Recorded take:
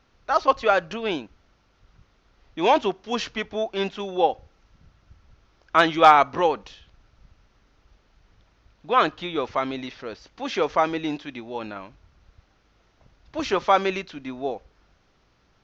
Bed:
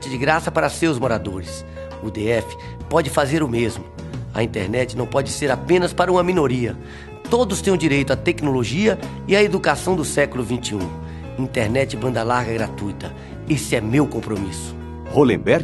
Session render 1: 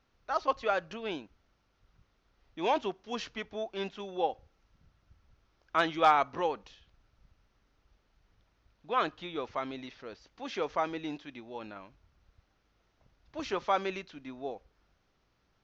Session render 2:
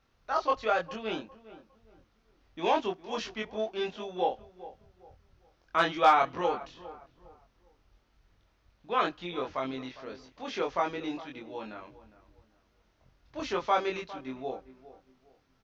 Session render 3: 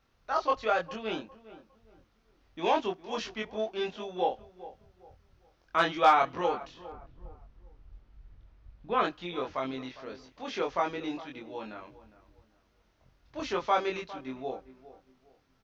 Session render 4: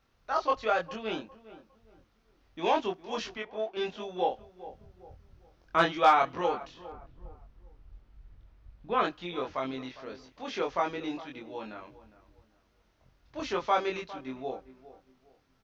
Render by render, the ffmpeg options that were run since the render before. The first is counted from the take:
ffmpeg -i in.wav -af "volume=-10dB" out.wav
ffmpeg -i in.wav -filter_complex "[0:a]asplit=2[link_01][link_02];[link_02]adelay=23,volume=-2dB[link_03];[link_01][link_03]amix=inputs=2:normalize=0,asplit=2[link_04][link_05];[link_05]adelay=406,lowpass=frequency=1500:poles=1,volume=-16dB,asplit=2[link_06][link_07];[link_07]adelay=406,lowpass=frequency=1500:poles=1,volume=0.32,asplit=2[link_08][link_09];[link_09]adelay=406,lowpass=frequency=1500:poles=1,volume=0.32[link_10];[link_04][link_06][link_08][link_10]amix=inputs=4:normalize=0" out.wav
ffmpeg -i in.wav -filter_complex "[0:a]asettb=1/sr,asplit=3[link_01][link_02][link_03];[link_01]atrim=end=6.924[link_04];[link_02]atrim=start=6.92:end=9.04,asetpts=PTS-STARTPTS,afade=type=in:duration=0.004:curve=qsin,afade=type=out:start_time=2.116:duration=0.004:curve=qsin,aemphasis=mode=reproduction:type=bsi[link_05];[link_03]atrim=start=9.036[link_06];[link_04][link_05]acrossfade=duration=0.004:curve1=hsin:curve2=qsin[link_07];[link_07][link_06]acrossfade=duration=0.004:curve1=qsin:curve2=hsin" out.wav
ffmpeg -i in.wav -filter_complex "[0:a]asettb=1/sr,asplit=3[link_01][link_02][link_03];[link_01]atrim=end=3.374[link_04];[link_02]atrim=start=3.37:end=3.77,asetpts=PTS-STARTPTS,afade=type=in:duration=0.004:curve=qsin,afade=type=out:start_time=0.396:duration=0.004:curve=qsin,bass=frequency=250:gain=-12,treble=frequency=4000:gain=-11[link_05];[link_03]atrim=start=3.766[link_06];[link_04][link_05]acrossfade=duration=0.004:curve1=hsin:curve2=qsin[link_07];[link_07][link_06]acrossfade=duration=0.004:curve1=qsin:curve2=hsin,asettb=1/sr,asplit=3[link_08][link_09][link_10];[link_08]atrim=end=4.674[link_11];[link_09]atrim=start=4.67:end=5.86,asetpts=PTS-STARTPTS,afade=type=in:duration=0.004:curve=qsin,afade=type=out:start_time=1.186:duration=0.004:curve=qsin,lowshelf=frequency=480:gain=7[link_12];[link_10]atrim=start=5.856[link_13];[link_11][link_12]acrossfade=duration=0.004:curve1=hsin:curve2=qsin[link_14];[link_14][link_13]acrossfade=duration=0.004:curve1=qsin:curve2=hsin" out.wav

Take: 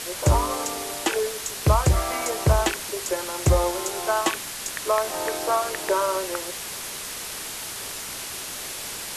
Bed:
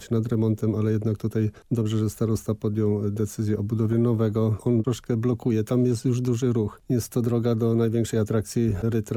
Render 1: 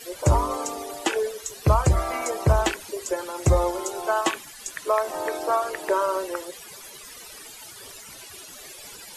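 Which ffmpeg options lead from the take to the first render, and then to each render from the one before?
ffmpeg -i in.wav -af "afftdn=noise_reduction=16:noise_floor=-34" out.wav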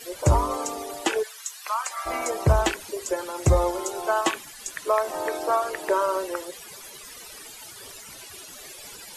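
ffmpeg -i in.wav -filter_complex "[0:a]asplit=3[link_01][link_02][link_03];[link_01]afade=type=out:start_time=1.22:duration=0.02[link_04];[link_02]highpass=frequency=1000:width=0.5412,highpass=frequency=1000:width=1.3066,afade=type=in:start_time=1.22:duration=0.02,afade=type=out:start_time=2.05:duration=0.02[link_05];[link_03]afade=type=in:start_time=2.05:duration=0.02[link_06];[link_04][link_05][link_06]amix=inputs=3:normalize=0" out.wav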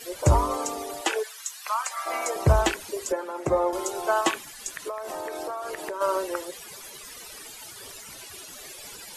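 ffmpeg -i in.wav -filter_complex "[0:a]asettb=1/sr,asplit=3[link_01][link_02][link_03];[link_01]atrim=end=1.014[link_04];[link_02]atrim=start=1.01:end=2.36,asetpts=PTS-STARTPTS,afade=type=in:duration=0.004:curve=qsin,afade=type=out:start_time=1.346:duration=0.004:curve=qsin,highpass=430[link_05];[link_03]atrim=start=2.356[link_06];[link_04][link_05]acrossfade=duration=0.004:curve1=hsin:curve2=qsin[link_07];[link_07][link_06]acrossfade=duration=0.004:curve1=qsin:curve2=hsin,asettb=1/sr,asplit=3[link_08][link_09][link_10];[link_08]atrim=end=3.124[link_11];[link_09]atrim=start=3.12:end=3.73,asetpts=PTS-STARTPTS,afade=type=in:duration=0.004:curve=qsin,afade=type=out:start_time=0.606:duration=0.004:curve=qsin,acrossover=split=190 2100:gain=0.0794 1 0.224[link_12][link_13][link_14];[link_12][link_13][link_14]amix=inputs=3:normalize=0[link_15];[link_10]atrim=start=3.726[link_16];[link_11][link_15]acrossfade=duration=0.004:curve1=hsin:curve2=qsin[link_17];[link_17][link_16]acrossfade=duration=0.004:curve1=qsin:curve2=hsin,asplit=3[link_18][link_19][link_20];[link_18]afade=type=out:start_time=4.75:duration=0.02[link_21];[link_19]acompressor=threshold=-29dB:ratio=10:attack=3.2:release=140:knee=1:detection=peak,afade=type=in:start_time=4.75:duration=0.02,afade=type=out:start_time=6:duration=0.02[link_22];[link_20]afade=type=in:start_time=6:duration=0.02[link_23];[link_21][link_22][link_23]amix=inputs=3:normalize=0" out.wav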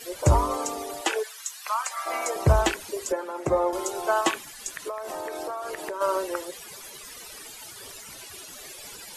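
ffmpeg -i in.wav -af anull out.wav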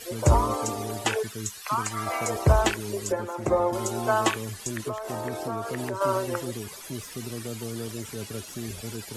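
ffmpeg -i in.wav -i bed.wav -filter_complex "[1:a]volume=-13dB[link_01];[0:a][link_01]amix=inputs=2:normalize=0" out.wav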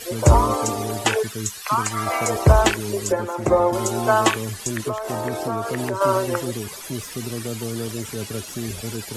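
ffmpeg -i in.wav -af "volume=6dB,alimiter=limit=-2dB:level=0:latency=1" out.wav

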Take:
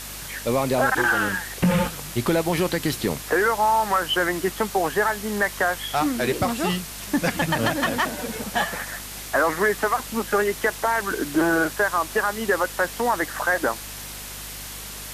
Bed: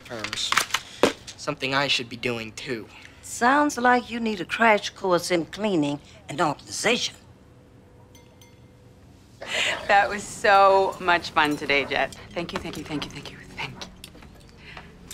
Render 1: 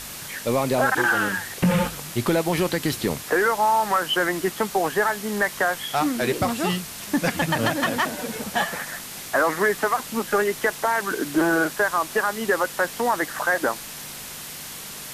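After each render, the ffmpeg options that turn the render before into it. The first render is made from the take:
ffmpeg -i in.wav -af "bandreject=frequency=50:width_type=h:width=4,bandreject=frequency=100:width_type=h:width=4" out.wav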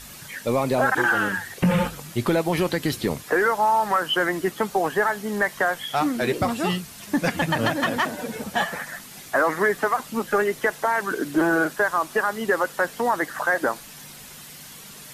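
ffmpeg -i in.wav -af "afftdn=noise_reduction=8:noise_floor=-37" out.wav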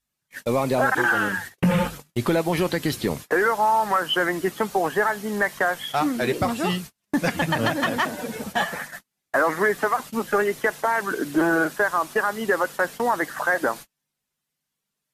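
ffmpeg -i in.wav -af "agate=range=-40dB:threshold=-34dB:ratio=16:detection=peak" out.wav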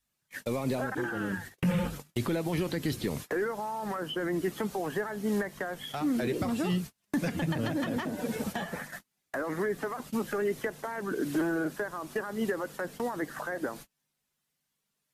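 ffmpeg -i in.wav -filter_complex "[0:a]acrossover=split=1400[link_01][link_02];[link_01]alimiter=limit=-21dB:level=0:latency=1:release=31[link_03];[link_03][link_02]amix=inputs=2:normalize=0,acrossover=split=490[link_04][link_05];[link_05]acompressor=threshold=-38dB:ratio=5[link_06];[link_04][link_06]amix=inputs=2:normalize=0" out.wav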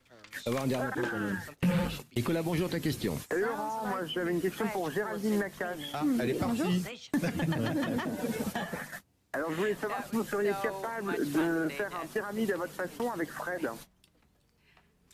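ffmpeg -i in.wav -i bed.wav -filter_complex "[1:a]volume=-21.5dB[link_01];[0:a][link_01]amix=inputs=2:normalize=0" out.wav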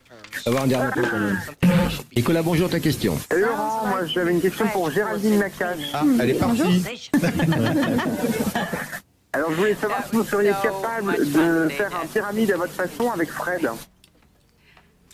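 ffmpeg -i in.wav -af "volume=10.5dB" out.wav

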